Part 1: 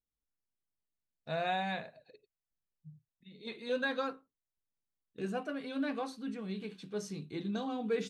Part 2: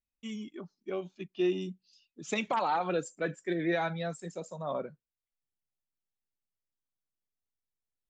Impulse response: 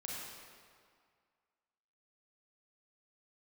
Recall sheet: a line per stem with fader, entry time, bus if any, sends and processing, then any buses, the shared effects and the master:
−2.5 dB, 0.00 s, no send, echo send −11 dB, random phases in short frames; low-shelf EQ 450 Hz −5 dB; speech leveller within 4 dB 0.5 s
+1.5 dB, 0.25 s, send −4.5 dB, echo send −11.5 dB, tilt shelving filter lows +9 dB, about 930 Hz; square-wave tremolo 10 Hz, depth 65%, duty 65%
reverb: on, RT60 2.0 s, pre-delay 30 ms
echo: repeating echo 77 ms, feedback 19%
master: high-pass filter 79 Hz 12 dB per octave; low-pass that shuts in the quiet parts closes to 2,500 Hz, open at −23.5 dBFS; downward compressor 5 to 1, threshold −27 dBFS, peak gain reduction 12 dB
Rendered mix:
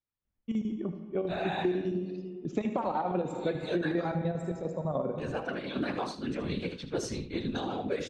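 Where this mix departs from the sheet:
stem 1 −2.5 dB → +6.0 dB
master: missing high-pass filter 79 Hz 12 dB per octave

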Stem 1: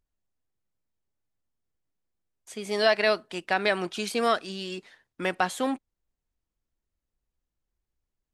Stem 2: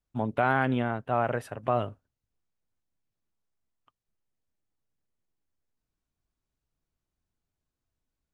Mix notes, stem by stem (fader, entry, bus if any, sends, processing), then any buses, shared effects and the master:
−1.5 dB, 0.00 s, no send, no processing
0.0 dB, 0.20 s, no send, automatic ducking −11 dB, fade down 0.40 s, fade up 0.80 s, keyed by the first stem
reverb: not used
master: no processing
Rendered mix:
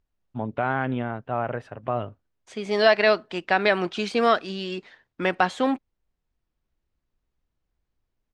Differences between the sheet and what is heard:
stem 1 −1.5 dB → +5.0 dB
master: extra high-frequency loss of the air 130 metres

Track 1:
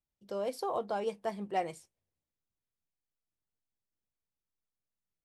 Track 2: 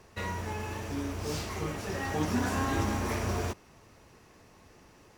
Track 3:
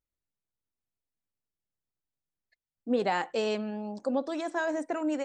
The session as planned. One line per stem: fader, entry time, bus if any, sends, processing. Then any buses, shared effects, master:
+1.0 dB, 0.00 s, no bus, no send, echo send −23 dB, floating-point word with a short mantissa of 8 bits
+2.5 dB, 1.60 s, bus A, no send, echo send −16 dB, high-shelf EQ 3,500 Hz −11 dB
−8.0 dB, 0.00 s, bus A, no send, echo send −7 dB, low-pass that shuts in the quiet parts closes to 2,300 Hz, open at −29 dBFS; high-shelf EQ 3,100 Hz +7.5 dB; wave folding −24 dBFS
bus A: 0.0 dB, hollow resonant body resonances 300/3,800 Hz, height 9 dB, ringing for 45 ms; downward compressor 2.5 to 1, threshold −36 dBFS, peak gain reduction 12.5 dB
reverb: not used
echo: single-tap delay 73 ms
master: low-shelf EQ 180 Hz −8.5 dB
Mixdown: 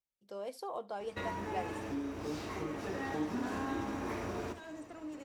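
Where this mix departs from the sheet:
stem 1 +1.0 dB → −6.0 dB
stem 2: entry 1.60 s → 1.00 s
stem 3 −8.0 dB → −19.0 dB

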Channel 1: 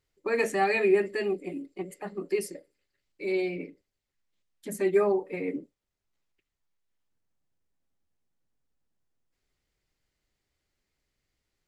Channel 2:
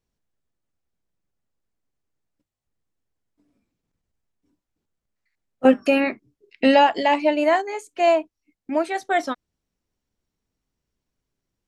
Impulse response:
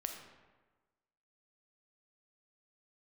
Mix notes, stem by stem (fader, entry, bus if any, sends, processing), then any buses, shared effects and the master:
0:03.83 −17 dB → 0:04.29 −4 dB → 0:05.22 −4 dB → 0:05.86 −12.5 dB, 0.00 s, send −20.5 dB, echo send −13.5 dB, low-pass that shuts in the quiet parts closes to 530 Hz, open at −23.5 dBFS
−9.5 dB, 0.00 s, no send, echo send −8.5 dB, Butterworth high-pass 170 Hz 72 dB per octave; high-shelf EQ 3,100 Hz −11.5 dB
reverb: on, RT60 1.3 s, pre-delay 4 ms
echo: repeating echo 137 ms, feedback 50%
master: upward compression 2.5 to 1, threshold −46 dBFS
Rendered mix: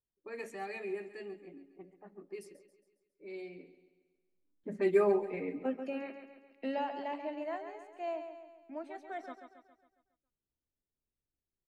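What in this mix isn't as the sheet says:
stem 2 −9.5 dB → −20.0 dB
master: missing upward compression 2.5 to 1, threshold −46 dBFS

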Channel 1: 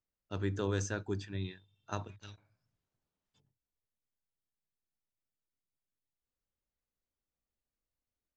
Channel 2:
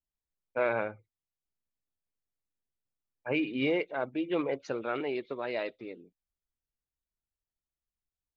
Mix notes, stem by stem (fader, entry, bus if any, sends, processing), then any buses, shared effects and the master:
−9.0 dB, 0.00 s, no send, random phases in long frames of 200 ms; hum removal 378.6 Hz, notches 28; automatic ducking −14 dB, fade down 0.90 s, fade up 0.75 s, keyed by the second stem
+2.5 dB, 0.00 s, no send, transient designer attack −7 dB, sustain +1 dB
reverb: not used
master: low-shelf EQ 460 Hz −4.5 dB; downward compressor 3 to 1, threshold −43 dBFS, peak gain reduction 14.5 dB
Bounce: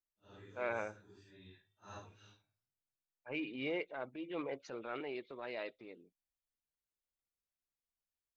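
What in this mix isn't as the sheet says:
stem 2 +2.5 dB → −6.5 dB
master: missing downward compressor 3 to 1, threshold −43 dBFS, peak gain reduction 14.5 dB

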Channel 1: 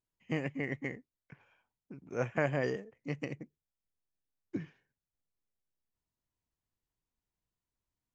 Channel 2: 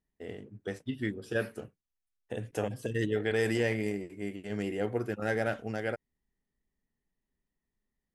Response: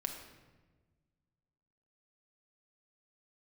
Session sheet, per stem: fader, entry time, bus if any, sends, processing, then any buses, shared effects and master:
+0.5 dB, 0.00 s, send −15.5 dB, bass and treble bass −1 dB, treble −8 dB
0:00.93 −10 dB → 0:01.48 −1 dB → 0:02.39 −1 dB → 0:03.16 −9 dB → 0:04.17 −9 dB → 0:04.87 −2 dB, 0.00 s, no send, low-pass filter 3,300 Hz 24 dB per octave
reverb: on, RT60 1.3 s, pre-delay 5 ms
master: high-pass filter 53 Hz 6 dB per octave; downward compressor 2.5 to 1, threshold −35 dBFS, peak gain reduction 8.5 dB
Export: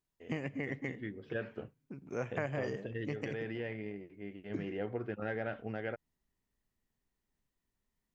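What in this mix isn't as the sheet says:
stem 1: missing bass and treble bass −1 dB, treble −8 dB
master: missing high-pass filter 53 Hz 6 dB per octave

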